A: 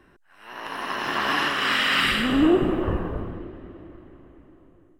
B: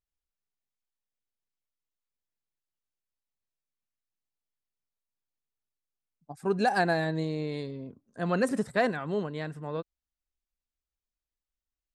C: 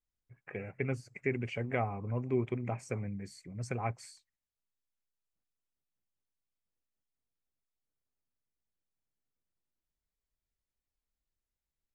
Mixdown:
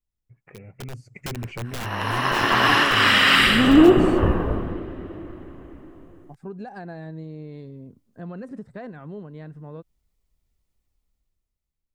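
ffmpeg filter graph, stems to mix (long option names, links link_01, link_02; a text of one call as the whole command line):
ffmpeg -i stem1.wav -i stem2.wav -i stem3.wav -filter_complex "[0:a]flanger=delay=8.7:depth=7:regen=-72:speed=0.78:shape=triangular,adelay=1350,volume=-1dB[link_01];[1:a]aemphasis=mode=reproduction:type=75kf,alimiter=limit=-20dB:level=0:latency=1:release=166,volume=-18dB[link_02];[2:a]bandreject=frequency=1600:width=7.9,aeval=exprs='(mod(22.4*val(0)+1,2)-1)/22.4':channel_layout=same,volume=-2dB[link_03];[link_02][link_03]amix=inputs=2:normalize=0,lowshelf=frequency=300:gain=10,acompressor=threshold=-50dB:ratio=2,volume=0dB[link_04];[link_01][link_04]amix=inputs=2:normalize=0,dynaudnorm=framelen=210:gausssize=9:maxgain=12.5dB" out.wav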